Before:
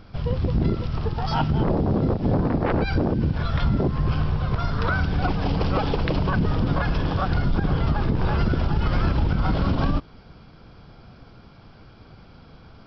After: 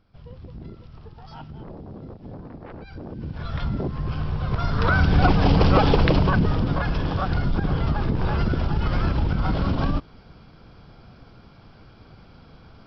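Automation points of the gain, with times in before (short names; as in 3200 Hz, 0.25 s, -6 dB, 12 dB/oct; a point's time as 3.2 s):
2.9 s -17.5 dB
3.52 s -5 dB
4.12 s -5 dB
5.16 s +6 dB
6.01 s +6 dB
6.69 s -1 dB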